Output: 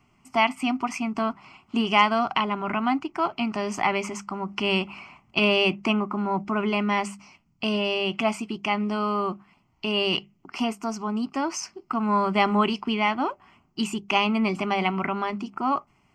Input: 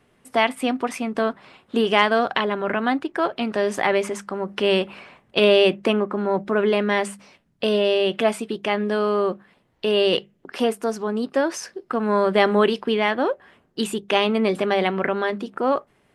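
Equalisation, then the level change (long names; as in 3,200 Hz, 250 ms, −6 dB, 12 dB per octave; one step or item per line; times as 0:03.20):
phaser with its sweep stopped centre 2,500 Hz, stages 8
+1.5 dB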